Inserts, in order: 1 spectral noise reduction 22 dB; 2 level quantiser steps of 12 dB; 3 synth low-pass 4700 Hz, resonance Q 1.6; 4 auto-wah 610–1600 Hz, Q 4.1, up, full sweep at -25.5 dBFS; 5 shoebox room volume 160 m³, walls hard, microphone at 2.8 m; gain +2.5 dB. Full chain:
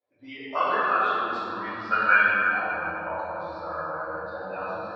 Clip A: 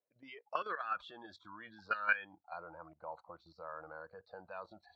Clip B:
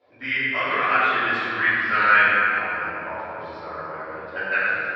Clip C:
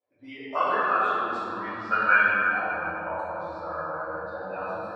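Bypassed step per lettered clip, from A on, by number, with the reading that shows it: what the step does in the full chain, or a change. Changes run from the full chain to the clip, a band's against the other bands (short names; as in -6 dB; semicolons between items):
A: 5, echo-to-direct 16.0 dB to none; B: 1, 4 kHz band +5.5 dB; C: 3, 4 kHz band -3.5 dB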